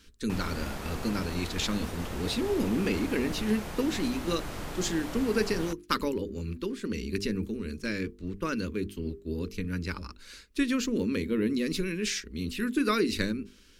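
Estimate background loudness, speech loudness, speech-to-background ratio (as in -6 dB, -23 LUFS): -39.0 LUFS, -31.5 LUFS, 7.5 dB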